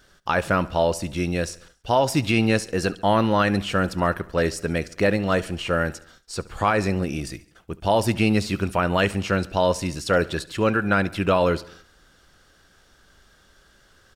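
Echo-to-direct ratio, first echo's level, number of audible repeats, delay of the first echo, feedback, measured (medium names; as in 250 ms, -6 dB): -19.0 dB, -20.5 dB, 3, 70 ms, 56%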